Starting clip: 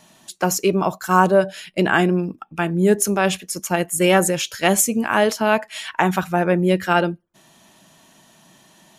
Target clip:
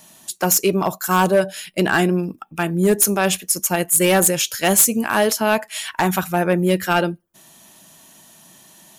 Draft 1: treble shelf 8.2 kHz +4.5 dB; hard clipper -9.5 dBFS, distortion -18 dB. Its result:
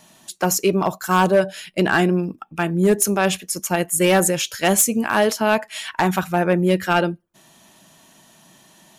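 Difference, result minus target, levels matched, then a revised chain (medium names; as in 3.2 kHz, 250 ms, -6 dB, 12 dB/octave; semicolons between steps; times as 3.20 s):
8 kHz band -2.5 dB
treble shelf 8.2 kHz +16.5 dB; hard clipper -9.5 dBFS, distortion -12 dB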